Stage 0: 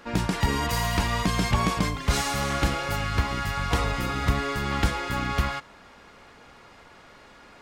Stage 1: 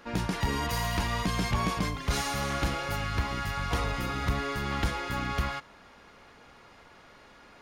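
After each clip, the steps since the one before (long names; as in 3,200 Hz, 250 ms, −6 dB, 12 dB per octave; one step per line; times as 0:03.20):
notch filter 7,800 Hz, Q 9.5
soft clipping −14.5 dBFS, distortion −19 dB
level −3.5 dB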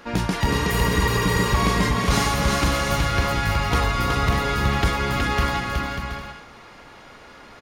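healed spectral selection 0:00.56–0:01.51, 350–6,700 Hz before
on a send: bouncing-ball delay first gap 370 ms, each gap 0.6×, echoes 5
on the sum: level +7 dB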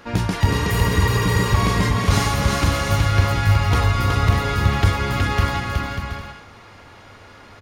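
parametric band 97 Hz +14.5 dB 0.36 octaves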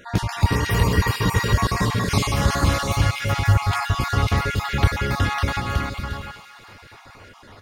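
time-frequency cells dropped at random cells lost 29%
feedback echo with a high-pass in the loop 230 ms, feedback 76%, high-pass 1,000 Hz, level −13.5 dB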